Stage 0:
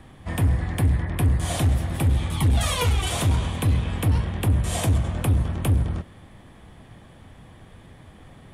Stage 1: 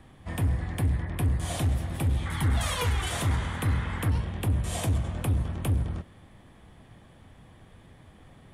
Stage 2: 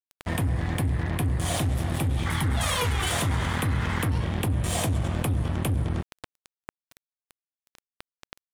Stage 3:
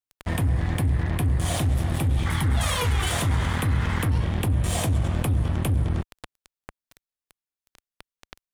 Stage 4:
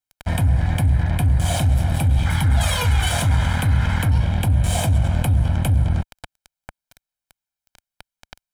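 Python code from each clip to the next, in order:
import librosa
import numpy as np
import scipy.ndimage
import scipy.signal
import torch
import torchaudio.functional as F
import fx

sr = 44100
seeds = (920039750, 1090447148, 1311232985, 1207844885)

y1 = fx.spec_paint(x, sr, seeds[0], shape='noise', start_s=2.25, length_s=1.85, low_hz=780.0, high_hz=2200.0, level_db=-35.0)
y1 = y1 * librosa.db_to_amplitude(-5.5)
y2 = scipy.signal.sosfilt(scipy.signal.butter(2, 66.0, 'highpass', fs=sr, output='sos'), y1)
y2 = np.sign(y2) * np.maximum(np.abs(y2) - 10.0 ** (-43.0 / 20.0), 0.0)
y2 = fx.env_flatten(y2, sr, amount_pct=70)
y3 = fx.low_shelf(y2, sr, hz=65.0, db=9.0)
y4 = y3 + 0.62 * np.pad(y3, (int(1.3 * sr / 1000.0), 0))[:len(y3)]
y4 = y4 * librosa.db_to_amplitude(2.0)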